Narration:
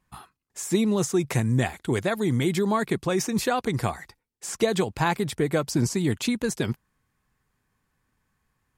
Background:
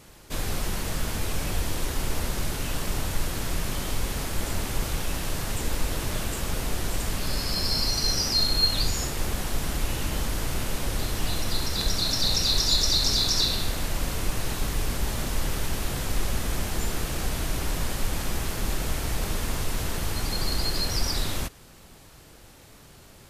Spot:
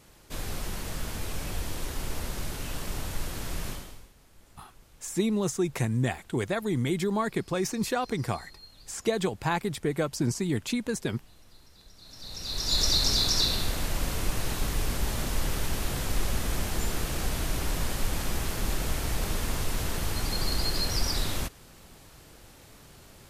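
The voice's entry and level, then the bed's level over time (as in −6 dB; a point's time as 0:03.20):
4.45 s, −4.0 dB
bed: 0:03.70 −5.5 dB
0:04.13 −28.5 dB
0:11.94 −28.5 dB
0:12.81 −1.5 dB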